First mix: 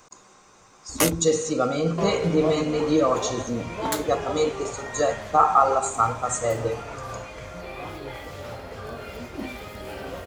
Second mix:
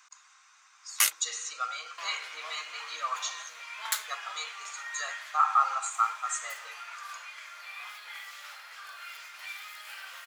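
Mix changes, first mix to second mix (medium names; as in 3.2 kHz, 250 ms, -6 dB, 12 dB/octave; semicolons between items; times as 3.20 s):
speech: add treble shelf 6.1 kHz -9 dB; master: add high-pass 1.3 kHz 24 dB/octave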